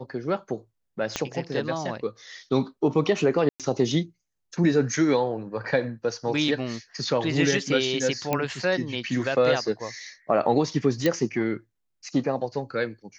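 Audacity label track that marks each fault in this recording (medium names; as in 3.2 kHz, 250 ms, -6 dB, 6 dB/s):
1.160000	1.160000	pop -11 dBFS
3.490000	3.600000	dropout 107 ms
8.330000	8.330000	pop -10 dBFS
11.060000	11.060000	pop -10 dBFS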